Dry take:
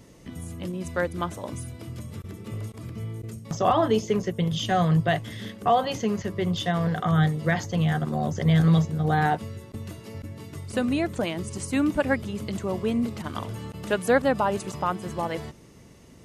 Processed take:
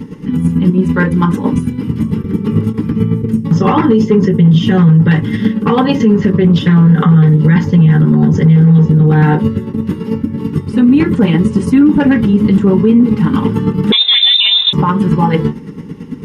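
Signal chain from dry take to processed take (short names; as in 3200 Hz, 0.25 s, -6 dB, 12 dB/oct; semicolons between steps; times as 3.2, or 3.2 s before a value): low shelf 200 Hz +7.5 dB; 9.71–10.82 compressor, threshold -30 dBFS, peak gain reduction 11 dB; chopper 9 Hz, depth 60%, duty 25%; hard clip -17 dBFS, distortion -12 dB; Butterworth band-stop 680 Hz, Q 2.6; reverb RT60 0.15 s, pre-delay 3 ms, DRR -2.5 dB; 13.92–14.73 inverted band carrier 3800 Hz; maximiser +8.5 dB; 6.26–6.87 Doppler distortion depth 0.14 ms; gain -1 dB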